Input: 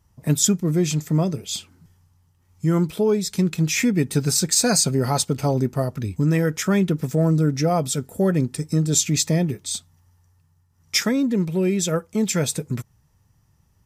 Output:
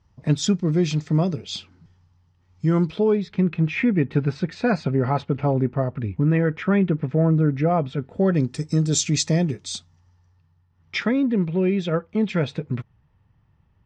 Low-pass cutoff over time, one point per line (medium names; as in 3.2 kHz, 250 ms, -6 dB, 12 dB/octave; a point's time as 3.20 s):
low-pass 24 dB/octave
2.84 s 5.1 kHz
3.36 s 2.7 kHz
7.97 s 2.7 kHz
8.55 s 6.7 kHz
9.65 s 6.7 kHz
11.06 s 3.3 kHz